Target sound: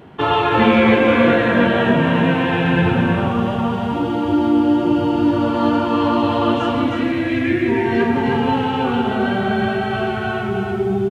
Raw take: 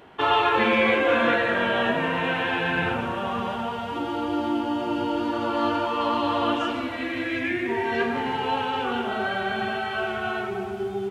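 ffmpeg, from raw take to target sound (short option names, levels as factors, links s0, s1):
-af "equalizer=f=140:t=o:w=2.5:g=14,aecho=1:1:313:0.631,volume=1.19"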